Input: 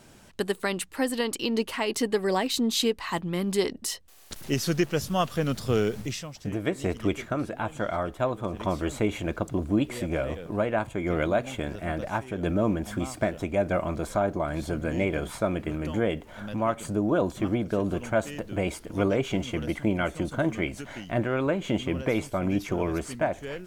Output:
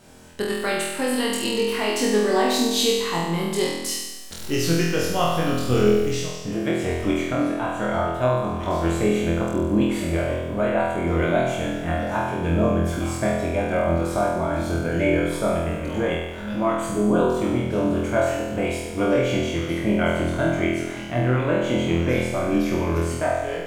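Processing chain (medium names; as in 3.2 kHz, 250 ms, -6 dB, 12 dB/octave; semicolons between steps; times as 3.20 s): flutter echo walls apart 4.1 m, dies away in 1.1 s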